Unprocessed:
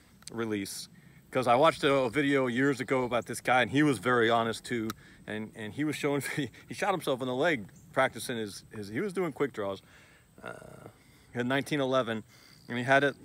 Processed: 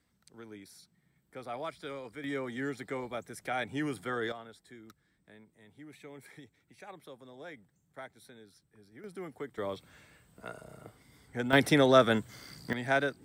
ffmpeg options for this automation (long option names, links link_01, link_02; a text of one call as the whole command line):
ffmpeg -i in.wav -af "asetnsamples=nb_out_samples=441:pad=0,asendcmd='2.24 volume volume -9dB;4.32 volume volume -19.5dB;9.04 volume volume -11dB;9.58 volume volume -2dB;11.53 volume volume 6dB;12.73 volume volume -4.5dB',volume=-16dB" out.wav